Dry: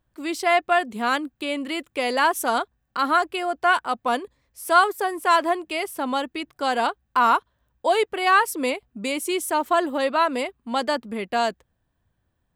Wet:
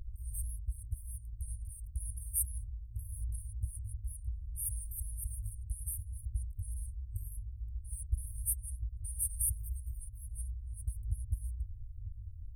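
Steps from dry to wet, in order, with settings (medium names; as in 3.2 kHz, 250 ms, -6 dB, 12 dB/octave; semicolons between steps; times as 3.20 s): RIAA curve playback; FFT band-reject 110–8500 Hz; trim +14 dB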